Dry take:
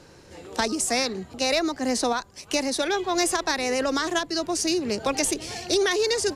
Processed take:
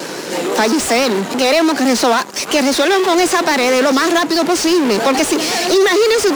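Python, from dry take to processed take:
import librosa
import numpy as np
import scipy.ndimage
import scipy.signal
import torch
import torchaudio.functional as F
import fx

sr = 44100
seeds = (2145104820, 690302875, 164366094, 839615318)

p1 = fx.vibrato(x, sr, rate_hz=6.0, depth_cents=70.0)
p2 = fx.fuzz(p1, sr, gain_db=46.0, gate_db=-55.0)
p3 = p1 + F.gain(torch.from_numpy(p2), -10.0).numpy()
p4 = scipy.signal.sosfilt(scipy.signal.butter(4, 200.0, 'highpass', fs=sr, output='sos'), p3)
p5 = fx.slew_limit(p4, sr, full_power_hz=360.0)
y = F.gain(torch.from_numpy(p5), 6.5).numpy()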